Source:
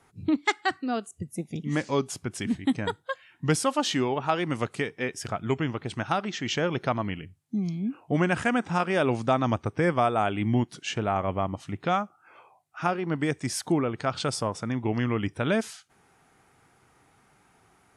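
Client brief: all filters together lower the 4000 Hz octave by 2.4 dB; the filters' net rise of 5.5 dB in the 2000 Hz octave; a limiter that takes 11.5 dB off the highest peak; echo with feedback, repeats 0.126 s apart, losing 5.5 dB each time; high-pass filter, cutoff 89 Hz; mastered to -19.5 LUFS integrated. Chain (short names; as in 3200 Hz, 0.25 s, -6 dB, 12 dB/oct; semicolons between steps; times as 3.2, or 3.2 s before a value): HPF 89 Hz; bell 2000 Hz +8.5 dB; bell 4000 Hz -7.5 dB; limiter -18.5 dBFS; feedback echo 0.126 s, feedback 53%, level -5.5 dB; gain +10 dB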